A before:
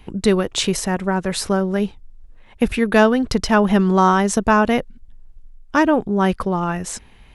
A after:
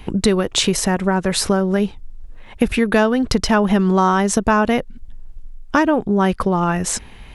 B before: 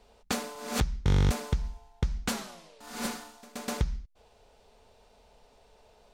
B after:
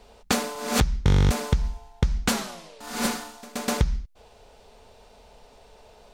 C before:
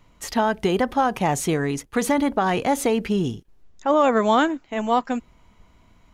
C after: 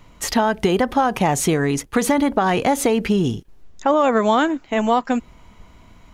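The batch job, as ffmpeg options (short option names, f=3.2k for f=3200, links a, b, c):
-af "acompressor=threshold=-24dB:ratio=2.5,volume=8dB"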